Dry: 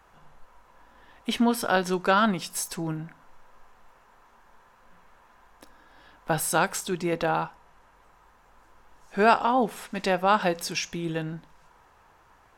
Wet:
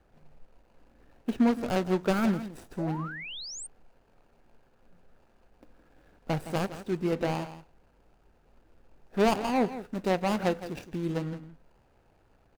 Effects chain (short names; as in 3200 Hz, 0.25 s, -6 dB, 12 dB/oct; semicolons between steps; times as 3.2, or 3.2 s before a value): median filter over 41 samples; echo 0.165 s -13 dB; painted sound rise, 2.78–3.67, 520–9200 Hz -40 dBFS